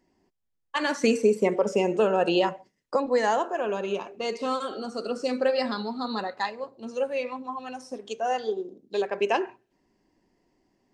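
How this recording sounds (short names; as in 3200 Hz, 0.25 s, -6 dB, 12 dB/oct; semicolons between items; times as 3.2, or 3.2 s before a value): noise floor -77 dBFS; spectral tilt -3.0 dB/oct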